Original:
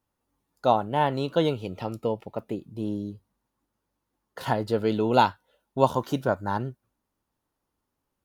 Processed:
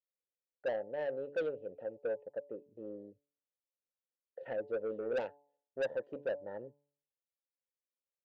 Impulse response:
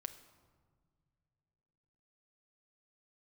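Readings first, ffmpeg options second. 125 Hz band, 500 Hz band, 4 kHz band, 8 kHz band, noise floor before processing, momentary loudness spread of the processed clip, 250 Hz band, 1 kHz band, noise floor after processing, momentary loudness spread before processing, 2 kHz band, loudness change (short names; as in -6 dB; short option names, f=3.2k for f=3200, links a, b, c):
-28.0 dB, -9.5 dB, under -20 dB, under -20 dB, -82 dBFS, 13 LU, -20.5 dB, -25.0 dB, under -85 dBFS, 12 LU, -10.0 dB, -13.0 dB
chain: -filter_complex "[0:a]afwtdn=0.0158,asplit=3[a][b][c];[a]bandpass=f=530:t=q:w=8,volume=0dB[d];[b]bandpass=f=1.84k:t=q:w=8,volume=-6dB[e];[c]bandpass=f=2.48k:t=q:w=8,volume=-9dB[f];[d][e][f]amix=inputs=3:normalize=0,highshelf=f=2.2k:g=-10.5,asoftclip=type=tanh:threshold=-31dB,bandreject=f=143.8:t=h:w=4,bandreject=f=287.6:t=h:w=4,bandreject=f=431.4:t=h:w=4,bandreject=f=575.2:t=h:w=4,bandreject=f=719:t=h:w=4,bandreject=f=862.8:t=h:w=4,bandreject=f=1.0066k:t=h:w=4,volume=1.5dB"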